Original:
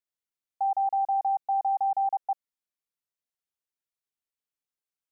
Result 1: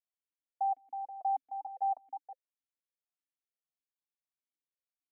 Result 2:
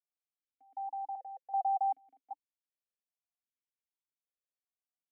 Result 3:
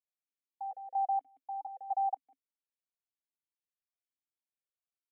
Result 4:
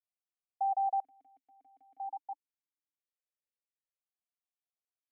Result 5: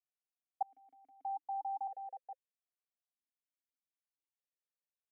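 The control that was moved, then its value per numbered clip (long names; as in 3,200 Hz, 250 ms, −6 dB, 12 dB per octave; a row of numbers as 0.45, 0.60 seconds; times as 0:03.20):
formant filter that steps through the vowels, speed: 6.6, 2.6, 4.2, 1, 1.6 Hertz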